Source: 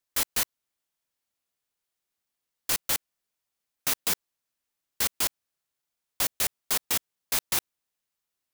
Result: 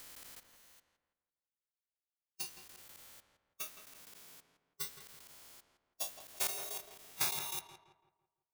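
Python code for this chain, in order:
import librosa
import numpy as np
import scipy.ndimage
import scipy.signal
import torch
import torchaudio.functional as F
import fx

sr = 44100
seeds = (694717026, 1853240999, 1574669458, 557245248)

y = fx.spec_steps(x, sr, hold_ms=400)
y = fx.transient(y, sr, attack_db=10, sustain_db=-6)
y = fx.noise_reduce_blind(y, sr, reduce_db=17)
y = fx.echo_filtered(y, sr, ms=167, feedback_pct=42, hz=2100.0, wet_db=-8.0)
y = F.gain(torch.from_numpy(y), 1.0).numpy()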